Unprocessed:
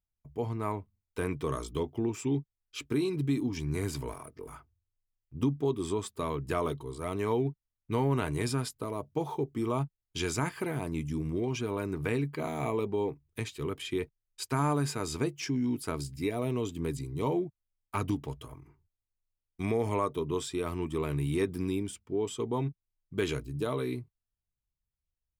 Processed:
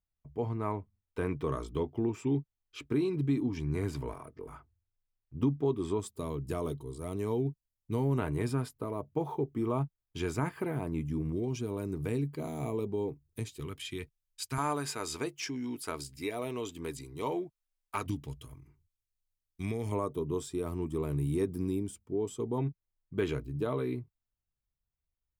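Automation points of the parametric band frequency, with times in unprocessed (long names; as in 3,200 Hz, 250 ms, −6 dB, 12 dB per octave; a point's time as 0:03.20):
parametric band −11 dB 2.7 octaves
12,000 Hz
from 0:06.00 1,700 Hz
from 0:08.18 5,900 Hz
from 0:11.33 1,700 Hz
from 0:13.60 550 Hz
from 0:14.58 120 Hz
from 0:18.06 760 Hz
from 0:19.92 2,500 Hz
from 0:22.58 7,800 Hz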